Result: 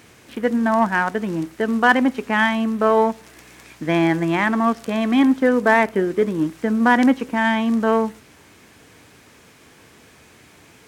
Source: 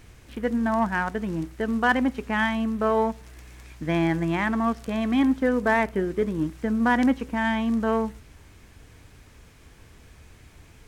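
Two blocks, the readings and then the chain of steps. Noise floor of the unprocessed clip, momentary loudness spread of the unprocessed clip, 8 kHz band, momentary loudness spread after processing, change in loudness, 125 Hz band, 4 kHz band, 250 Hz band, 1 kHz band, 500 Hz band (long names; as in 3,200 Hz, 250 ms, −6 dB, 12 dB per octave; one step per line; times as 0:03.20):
−51 dBFS, 7 LU, can't be measured, 7 LU, +5.5 dB, +2.0 dB, +6.5 dB, +5.0 dB, +6.5 dB, +6.5 dB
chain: high-pass filter 190 Hz 12 dB per octave
level +6.5 dB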